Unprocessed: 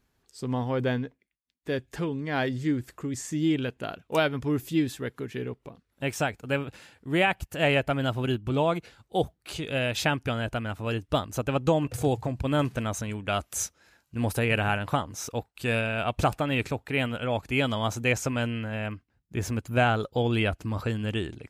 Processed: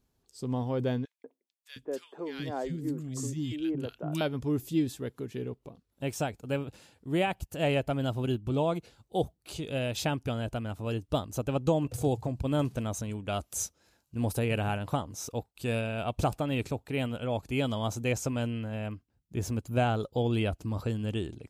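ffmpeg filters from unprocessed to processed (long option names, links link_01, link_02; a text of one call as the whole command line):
ffmpeg -i in.wav -filter_complex "[0:a]asettb=1/sr,asplit=3[link_01][link_02][link_03];[link_01]atrim=end=1.054[link_04];[link_02]atrim=start=1.05:end=4.21,asetpts=PTS-STARTPTS,afade=type=in:duration=0.004:curve=qsin,afade=type=out:start_time=3.156:duration=0.004:curve=qsin,acrossover=split=280|1500[link_05][link_06][link_07];[link_06]adelay=190[link_08];[link_05]adelay=710[link_09];[link_09][link_08][link_07]amix=inputs=3:normalize=0,atrim=end_sample=139356[link_10];[link_03]atrim=start=4.206[link_11];[link_04][link_10]acrossfade=duration=0.004:curve1=hsin:curve2=qsin[link_12];[link_12][link_11]acrossfade=duration=0.004:curve1=qsin:curve2=hsin,equalizer=frequency=1800:width=0.94:gain=-9.5,volume=-2dB" out.wav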